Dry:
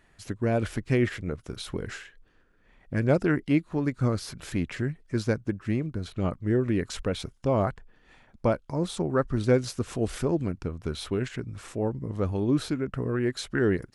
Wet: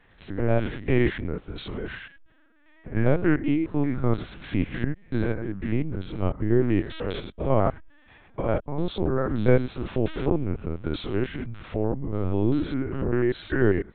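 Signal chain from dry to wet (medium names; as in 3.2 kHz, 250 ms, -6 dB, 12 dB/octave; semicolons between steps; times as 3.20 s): spectrogram pixelated in time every 100 ms; LPC vocoder at 8 kHz pitch kept; trim +5 dB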